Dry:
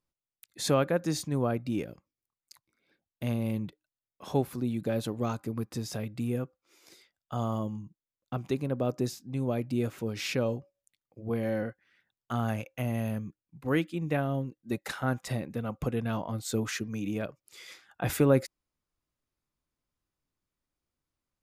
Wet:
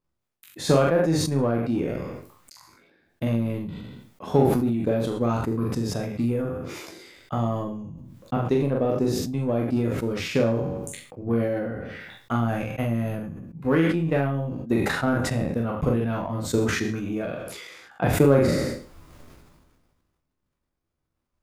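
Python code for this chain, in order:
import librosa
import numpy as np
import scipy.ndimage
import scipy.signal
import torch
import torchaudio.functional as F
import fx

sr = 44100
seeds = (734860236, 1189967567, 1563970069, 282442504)

p1 = fx.spec_trails(x, sr, decay_s=0.44)
p2 = fx.high_shelf(p1, sr, hz=2400.0, db=-10.5)
p3 = 10.0 ** (-29.5 / 20.0) * np.tanh(p2 / 10.0 ** (-29.5 / 20.0))
p4 = p2 + (p3 * 10.0 ** (-7.0 / 20.0))
p5 = fx.transient(p4, sr, attack_db=6, sustain_db=-8)
p6 = fx.room_early_taps(p5, sr, ms=(12, 43), db=(-8.0, -4.5))
y = fx.sustainer(p6, sr, db_per_s=33.0)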